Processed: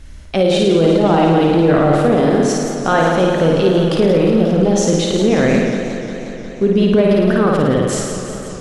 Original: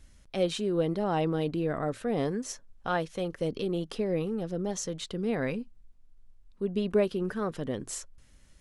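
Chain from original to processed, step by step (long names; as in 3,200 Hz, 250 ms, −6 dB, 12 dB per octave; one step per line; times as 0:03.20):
high-shelf EQ 6,700 Hz −10 dB
flutter between parallel walls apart 9.3 metres, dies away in 1 s
boost into a limiter +20.5 dB
feedback echo with a swinging delay time 179 ms, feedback 76%, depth 140 cents, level −10 dB
level −4 dB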